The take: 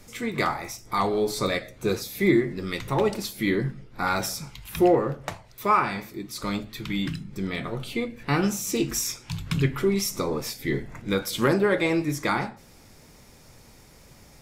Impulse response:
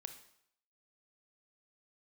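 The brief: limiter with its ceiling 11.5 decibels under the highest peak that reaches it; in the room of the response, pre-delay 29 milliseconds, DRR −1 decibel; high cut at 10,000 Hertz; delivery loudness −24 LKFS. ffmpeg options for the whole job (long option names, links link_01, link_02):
-filter_complex "[0:a]lowpass=10000,alimiter=limit=-21.5dB:level=0:latency=1,asplit=2[link_01][link_02];[1:a]atrim=start_sample=2205,adelay=29[link_03];[link_02][link_03]afir=irnorm=-1:irlink=0,volume=5.5dB[link_04];[link_01][link_04]amix=inputs=2:normalize=0,volume=4dB"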